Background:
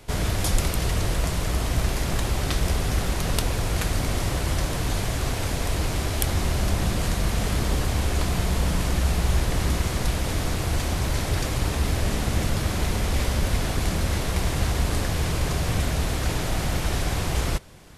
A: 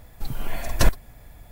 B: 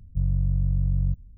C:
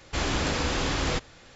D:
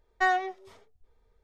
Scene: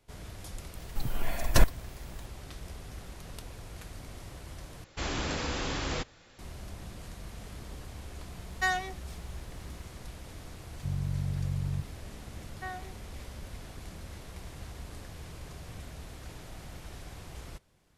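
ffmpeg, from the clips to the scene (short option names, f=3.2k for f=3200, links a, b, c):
-filter_complex "[4:a]asplit=2[a][b];[0:a]volume=-20dB[c];[a]crystalizer=i=8:c=0[d];[2:a]highpass=94[e];[c]asplit=2[f][g];[f]atrim=end=4.844[h];[3:a]atrim=end=1.55,asetpts=PTS-STARTPTS,volume=-6dB[i];[g]atrim=start=6.386[j];[1:a]atrim=end=1.51,asetpts=PTS-STARTPTS,volume=-3dB,afade=t=in:d=0.004:c=hsin,afade=t=out:st=1.506:d=0.004:c=hsin,adelay=750[k];[d]atrim=end=1.43,asetpts=PTS-STARTPTS,volume=-9.5dB,afade=t=in:d=0.004:c=hsin,afade=t=out:st=1.426:d=0.004:c=hsin,adelay=8410[l];[e]atrim=end=1.37,asetpts=PTS-STARTPTS,volume=-4dB,afade=t=in:d=0.004:c=hsin,afade=t=out:st=1.366:d=0.004:c=hsin,adelay=10680[m];[b]atrim=end=1.43,asetpts=PTS-STARTPTS,volume=-16dB,afade=t=in:d=0.004:c=hsin,afade=t=out:st=1.426:d=0.004:c=hsin,adelay=12410[n];[h][i]acrossfade=d=0.004:c1=hsin:c2=hsin[o];[o][j]acrossfade=d=0.004:c1=hsin:c2=hsin[p];[p][k][l][m][n]amix=inputs=5:normalize=0"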